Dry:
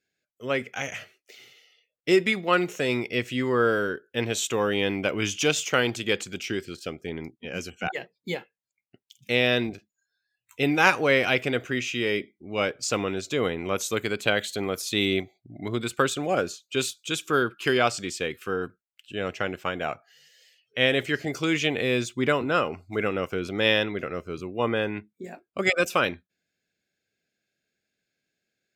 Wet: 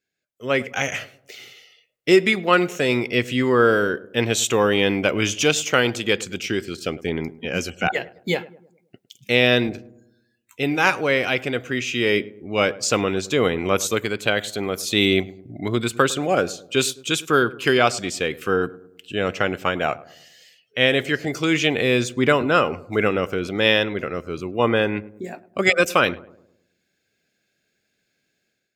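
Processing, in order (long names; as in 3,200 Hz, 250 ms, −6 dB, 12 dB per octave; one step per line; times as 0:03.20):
automatic gain control gain up to 11 dB
on a send: feedback echo with a low-pass in the loop 105 ms, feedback 50%, low-pass 990 Hz, level −17.5 dB
on the sum: level −2 dB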